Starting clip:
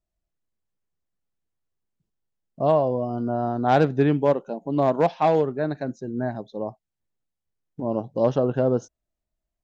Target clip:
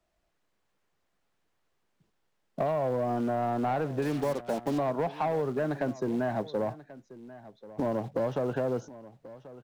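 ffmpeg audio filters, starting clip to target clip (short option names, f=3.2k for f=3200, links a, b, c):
-filter_complex "[0:a]acrossover=split=88|2700[a][b][c];[a]acompressor=threshold=-57dB:ratio=4[d];[b]acompressor=threshold=-26dB:ratio=4[e];[c]acompressor=threshold=-57dB:ratio=4[f];[d][e][f]amix=inputs=3:normalize=0,acrossover=split=170[g][h];[g]alimiter=level_in=16.5dB:limit=-24dB:level=0:latency=1:release=11,volume=-16.5dB[i];[h]acompressor=threshold=-38dB:ratio=6[j];[i][j]amix=inputs=2:normalize=0,acrusher=bits=7:mode=log:mix=0:aa=0.000001,asplit=2[k][l];[l]highpass=f=720:p=1,volume=15dB,asoftclip=type=tanh:threshold=-27.5dB[m];[k][m]amix=inputs=2:normalize=0,lowpass=f=1.9k:p=1,volume=-6dB,asettb=1/sr,asplit=3[n][o][p];[n]atrim=end=4.024[q];[o]atrim=start=4.02:end=4.78,asetpts=PTS-STARTPTS,afade=t=in:d=0.004:c=qsin,afade=t=out:st=0.756:d=0.004:c=qsin,acrusher=bits=7:mix=0:aa=0.5[r];[p]atrim=start=4.776[s];[q][r]acrossfade=d=0.004:c1=hsin:c2=qsin[t];[t][s]acrossfade=d=0.004:c1=qsin:c2=hsin,asplit=2[u][v];[v]aecho=0:1:1086:0.133[w];[u][w]amix=inputs=2:normalize=0,volume=8dB"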